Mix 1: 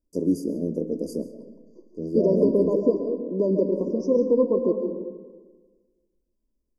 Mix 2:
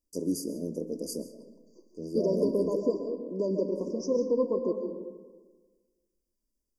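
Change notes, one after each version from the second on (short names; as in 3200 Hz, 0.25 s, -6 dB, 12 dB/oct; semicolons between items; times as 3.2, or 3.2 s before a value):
master: add tilt shelf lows -8 dB, about 1500 Hz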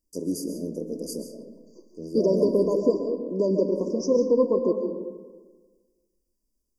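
first voice: send +7.5 dB; second voice +6.0 dB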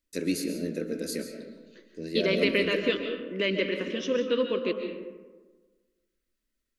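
second voice -6.0 dB; master: remove brick-wall FIR band-stop 1100–4600 Hz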